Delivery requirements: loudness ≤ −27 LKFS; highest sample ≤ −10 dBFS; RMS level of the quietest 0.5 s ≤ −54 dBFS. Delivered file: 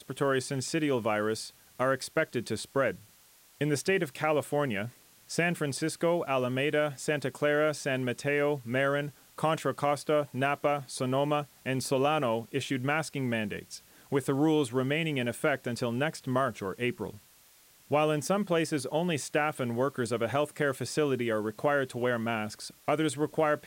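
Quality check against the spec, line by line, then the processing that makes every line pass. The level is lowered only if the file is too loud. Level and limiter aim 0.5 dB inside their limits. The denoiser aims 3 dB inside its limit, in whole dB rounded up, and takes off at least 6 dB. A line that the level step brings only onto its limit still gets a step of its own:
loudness −30.0 LKFS: in spec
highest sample −13.5 dBFS: in spec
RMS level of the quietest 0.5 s −60 dBFS: in spec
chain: no processing needed

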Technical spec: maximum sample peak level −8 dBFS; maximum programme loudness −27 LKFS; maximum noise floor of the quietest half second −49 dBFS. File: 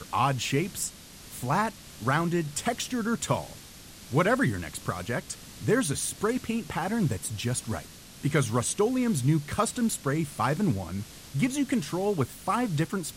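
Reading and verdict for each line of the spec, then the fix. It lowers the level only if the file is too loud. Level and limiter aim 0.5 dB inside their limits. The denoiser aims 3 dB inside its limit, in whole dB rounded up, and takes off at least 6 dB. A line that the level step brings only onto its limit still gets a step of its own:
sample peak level −12.0 dBFS: in spec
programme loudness −28.5 LKFS: in spec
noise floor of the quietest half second −47 dBFS: out of spec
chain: broadband denoise 6 dB, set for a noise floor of −47 dBFS

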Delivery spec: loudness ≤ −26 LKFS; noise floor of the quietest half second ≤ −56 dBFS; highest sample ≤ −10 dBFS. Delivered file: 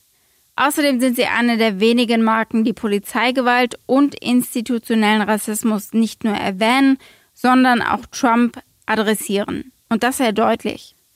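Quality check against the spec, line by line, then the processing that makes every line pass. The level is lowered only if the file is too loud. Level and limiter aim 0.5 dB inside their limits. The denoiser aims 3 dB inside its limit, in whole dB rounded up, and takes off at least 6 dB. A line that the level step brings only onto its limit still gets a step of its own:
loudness −17.5 LKFS: out of spec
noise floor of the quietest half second −59 dBFS: in spec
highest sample −5.0 dBFS: out of spec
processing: level −9 dB

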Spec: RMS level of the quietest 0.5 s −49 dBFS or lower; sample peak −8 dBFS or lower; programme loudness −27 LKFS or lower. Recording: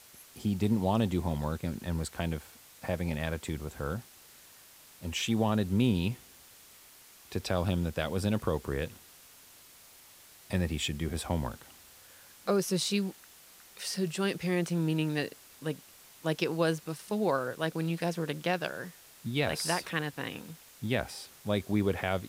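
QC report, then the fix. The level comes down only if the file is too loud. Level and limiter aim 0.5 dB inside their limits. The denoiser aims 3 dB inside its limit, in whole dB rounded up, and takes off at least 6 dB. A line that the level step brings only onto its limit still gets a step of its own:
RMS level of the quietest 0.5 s −55 dBFS: in spec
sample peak −14.5 dBFS: in spec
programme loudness −32.5 LKFS: in spec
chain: no processing needed

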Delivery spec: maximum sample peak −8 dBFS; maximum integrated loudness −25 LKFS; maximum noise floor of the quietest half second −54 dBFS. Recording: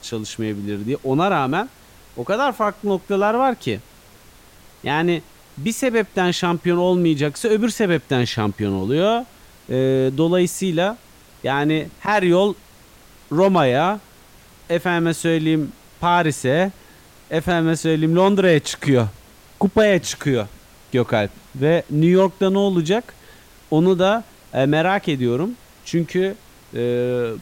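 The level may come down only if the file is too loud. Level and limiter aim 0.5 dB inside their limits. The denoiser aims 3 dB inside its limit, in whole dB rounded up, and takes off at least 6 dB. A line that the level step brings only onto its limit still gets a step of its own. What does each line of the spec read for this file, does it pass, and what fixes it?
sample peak −6.0 dBFS: out of spec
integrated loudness −19.5 LKFS: out of spec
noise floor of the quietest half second −47 dBFS: out of spec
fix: broadband denoise 6 dB, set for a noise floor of −47 dBFS
level −6 dB

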